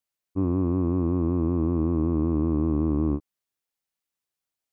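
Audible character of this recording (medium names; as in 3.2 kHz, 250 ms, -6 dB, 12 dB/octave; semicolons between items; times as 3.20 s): noise floor -88 dBFS; spectral tilt -8.5 dB/octave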